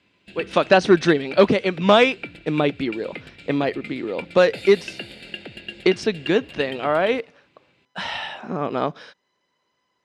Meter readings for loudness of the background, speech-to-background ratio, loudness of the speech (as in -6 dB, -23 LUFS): -36.5 LUFS, 15.5 dB, -21.0 LUFS